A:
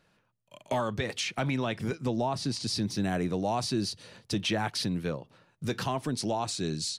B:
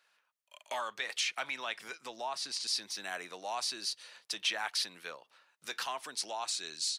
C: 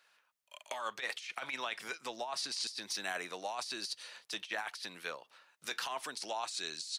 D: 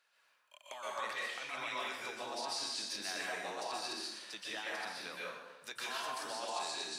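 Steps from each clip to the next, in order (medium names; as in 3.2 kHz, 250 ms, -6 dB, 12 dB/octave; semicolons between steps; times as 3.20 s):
high-pass 1.1 kHz 12 dB/octave
compressor with a negative ratio -38 dBFS, ratio -0.5
plate-style reverb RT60 1.1 s, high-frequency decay 0.75×, pre-delay 110 ms, DRR -6 dB; trim -7 dB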